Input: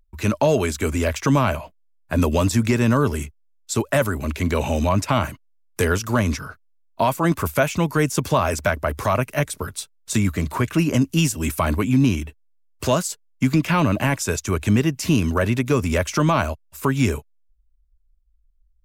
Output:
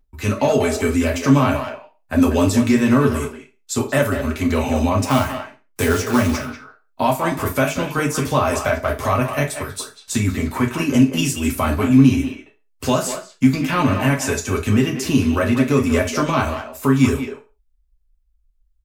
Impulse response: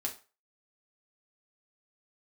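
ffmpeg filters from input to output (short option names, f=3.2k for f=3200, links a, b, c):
-filter_complex "[0:a]asettb=1/sr,asplit=3[a][b][c];[a]atrim=end=5.034[d];[b]atrim=start=5.03:end=6.45,asetpts=PTS-STARTPTS,afade=t=in:d=0.004:c=qsin,afade=t=out:st=1.416:d=0.004:c=qsin,acrusher=bits=3:mode=log:mix=0:aa=0.000001[e];[c]atrim=start=6.446[f];[d][e]acrossfade=d=0.004:c1=hsin:c2=qsin[g];[g][f]acrossfade=d=0.004:c1=qsin:c2=hsin,asplit=2[h][i];[i]adelay=190,highpass=300,lowpass=3.4k,asoftclip=type=hard:threshold=-16.5dB,volume=-7dB[j];[h][j]amix=inputs=2:normalize=0[k];[1:a]atrim=start_sample=2205,afade=t=out:st=0.26:d=0.01,atrim=end_sample=11907[l];[k][l]afir=irnorm=-1:irlink=0"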